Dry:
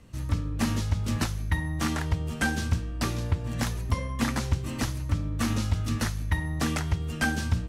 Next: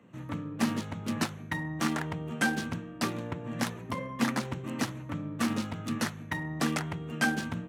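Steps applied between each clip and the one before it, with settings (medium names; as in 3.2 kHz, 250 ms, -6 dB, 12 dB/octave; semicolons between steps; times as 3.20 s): local Wiener filter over 9 samples; high-pass 150 Hz 24 dB/octave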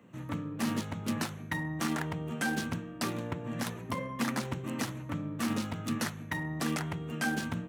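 treble shelf 9.7 kHz +7 dB; peak limiter -21 dBFS, peak gain reduction 8.5 dB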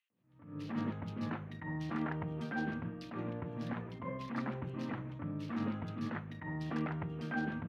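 distance through air 320 m; bands offset in time highs, lows 100 ms, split 2.9 kHz; attacks held to a fixed rise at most 100 dB/s; trim -2.5 dB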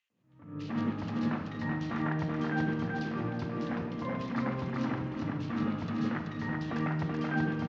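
feedback delay 381 ms, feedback 31%, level -3.5 dB; reverberation RT60 1.2 s, pre-delay 4 ms, DRR 8 dB; resampled via 16 kHz; trim +4 dB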